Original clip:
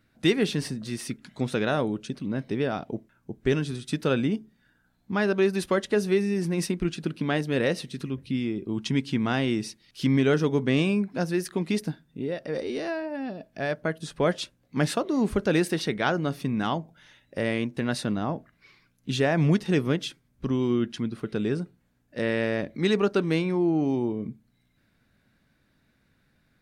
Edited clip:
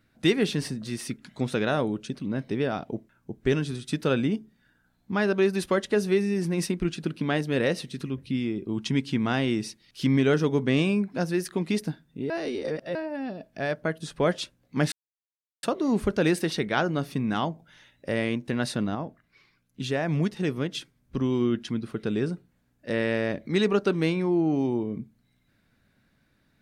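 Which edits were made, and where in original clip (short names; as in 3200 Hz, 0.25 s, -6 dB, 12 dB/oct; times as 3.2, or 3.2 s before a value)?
12.3–12.95 reverse
14.92 insert silence 0.71 s
18.24–20.04 gain -4 dB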